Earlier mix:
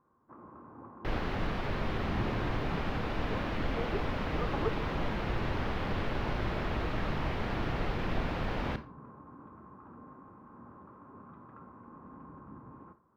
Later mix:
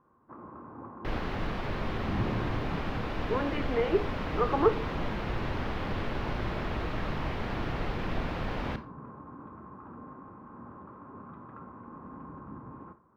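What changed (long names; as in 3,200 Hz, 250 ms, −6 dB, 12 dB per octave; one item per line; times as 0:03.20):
speech +11.0 dB
first sound +5.0 dB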